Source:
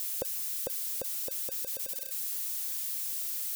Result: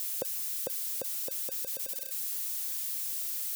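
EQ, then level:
high-pass filter 120 Hz 12 dB per octave
0.0 dB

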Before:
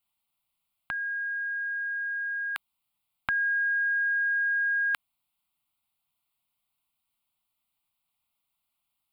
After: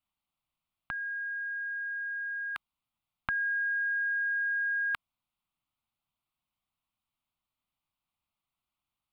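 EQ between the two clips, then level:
low-pass filter 3,900 Hz 6 dB per octave
low-shelf EQ 270 Hz +6 dB
parametric band 1,200 Hz +3 dB 0.43 octaves
−4.0 dB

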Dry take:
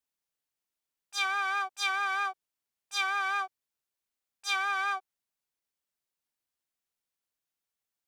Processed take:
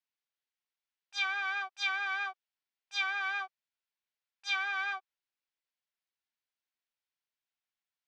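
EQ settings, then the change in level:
high-frequency loss of the air 190 metres
tilt shelving filter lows −7.5 dB, about 860 Hz
notch filter 1,200 Hz, Q 16
−4.0 dB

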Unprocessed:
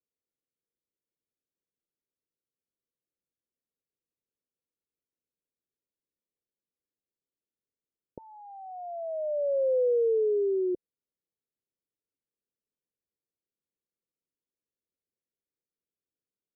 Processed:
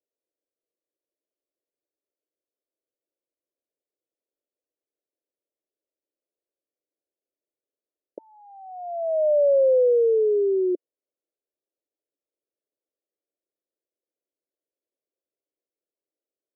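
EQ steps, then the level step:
four-pole ladder high-pass 270 Hz, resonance 50%
low-pass with resonance 620 Hz, resonance Q 4.9
+4.5 dB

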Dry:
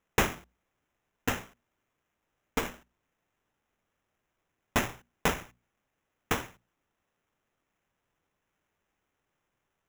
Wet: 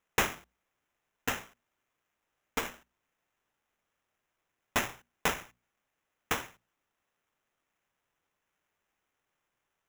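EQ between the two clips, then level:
low-shelf EQ 470 Hz −8 dB
0.0 dB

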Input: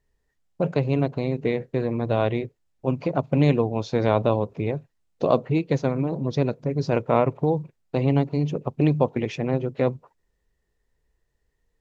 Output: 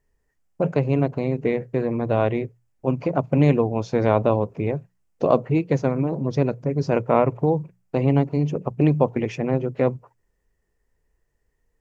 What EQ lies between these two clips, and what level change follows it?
parametric band 3,800 Hz −9 dB 0.6 octaves
mains-hum notches 60/120/180 Hz
+2.0 dB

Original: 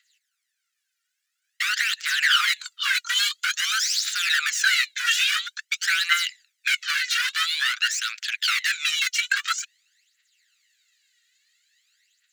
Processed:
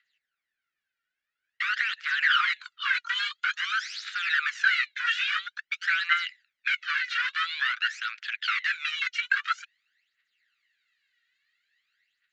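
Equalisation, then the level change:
head-to-tape spacing loss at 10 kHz 42 dB
+5.5 dB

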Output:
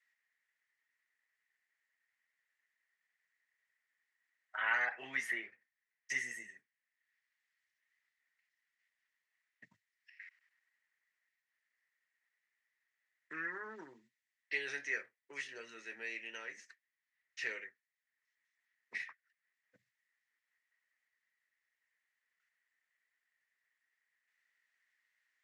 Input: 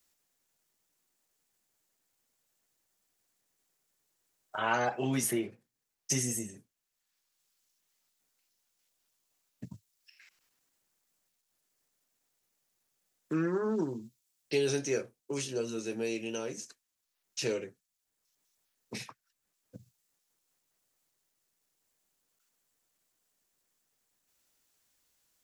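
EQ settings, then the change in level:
resonant band-pass 1,900 Hz, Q 11
+14.0 dB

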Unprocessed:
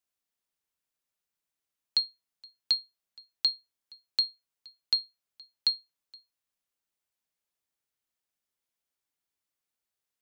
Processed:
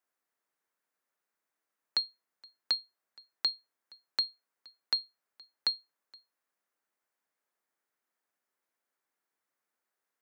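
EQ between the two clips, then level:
high-pass filter 260 Hz
high shelf with overshoot 2,300 Hz −8 dB, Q 1.5
+6.0 dB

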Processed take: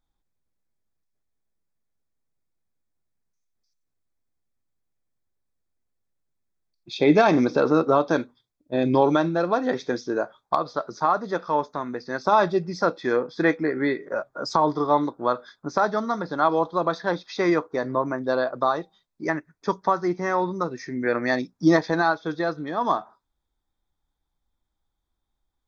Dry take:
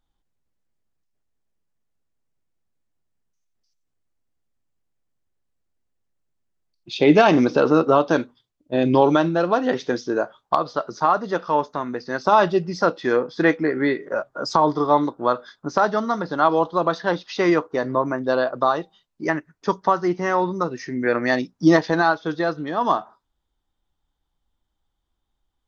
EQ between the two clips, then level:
Butterworth band-reject 2,900 Hz, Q 5.3
−3.0 dB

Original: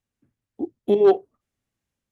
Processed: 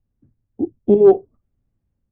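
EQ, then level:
spectral tilt −4 dB per octave
high-shelf EQ 2,100 Hz −9 dB
0.0 dB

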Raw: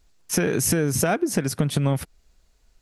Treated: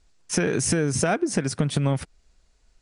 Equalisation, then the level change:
Chebyshev low-pass filter 10,000 Hz, order 10
0.0 dB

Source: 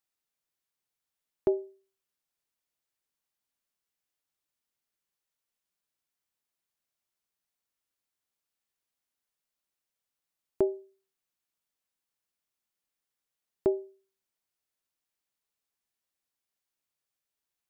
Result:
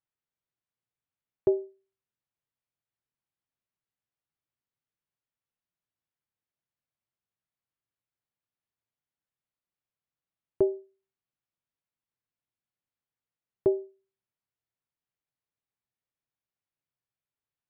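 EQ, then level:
dynamic equaliser 460 Hz, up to +6 dB, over −37 dBFS, Q 0.91
high-frequency loss of the air 280 metres
parametric band 120 Hz +10.5 dB 0.96 octaves
−3.0 dB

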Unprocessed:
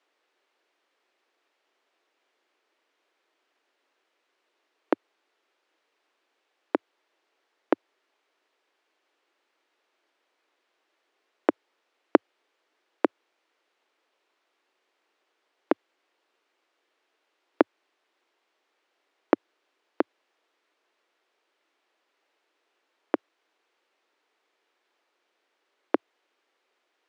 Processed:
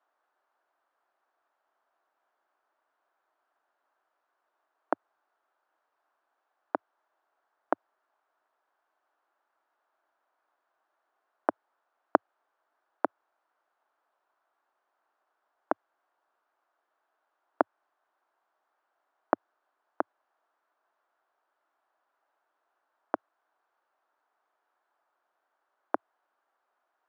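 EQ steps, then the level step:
low-shelf EQ 150 Hz +7 dB
low-shelf EQ 360 Hz +7 dB
flat-topped bell 1,000 Hz +15.5 dB
−15.5 dB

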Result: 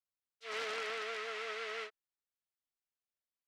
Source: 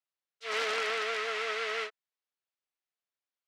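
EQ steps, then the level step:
low-shelf EQ 130 Hz +11 dB
−8.0 dB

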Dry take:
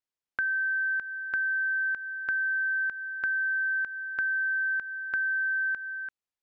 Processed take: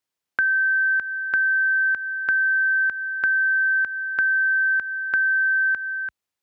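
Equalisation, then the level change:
high-pass filter 53 Hz 24 dB per octave
+8.0 dB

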